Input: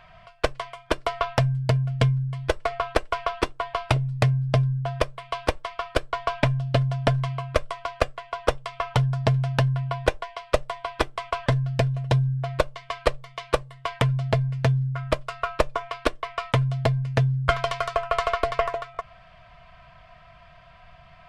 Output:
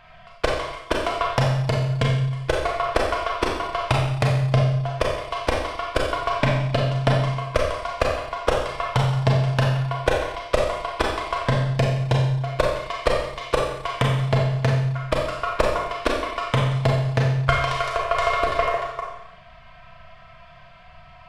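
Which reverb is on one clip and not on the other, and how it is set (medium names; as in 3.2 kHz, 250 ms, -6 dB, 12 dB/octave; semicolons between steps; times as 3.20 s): Schroeder reverb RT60 0.81 s, combs from 29 ms, DRR -1.5 dB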